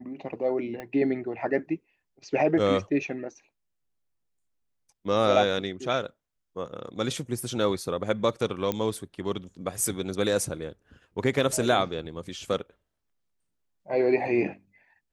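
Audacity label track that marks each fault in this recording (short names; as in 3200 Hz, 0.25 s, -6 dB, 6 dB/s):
0.800000	0.800000	pop -23 dBFS
8.720000	8.720000	pop -14 dBFS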